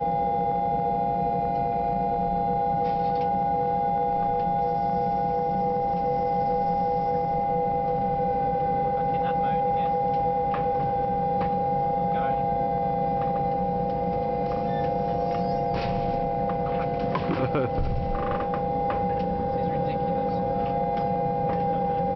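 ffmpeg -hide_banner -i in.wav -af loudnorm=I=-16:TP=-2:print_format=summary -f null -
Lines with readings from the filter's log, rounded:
Input Integrated:    -25.6 LUFS
Input True Peak:     -13.3 dBTP
Input LRA:             1.6 LU
Input Threshold:     -35.6 LUFS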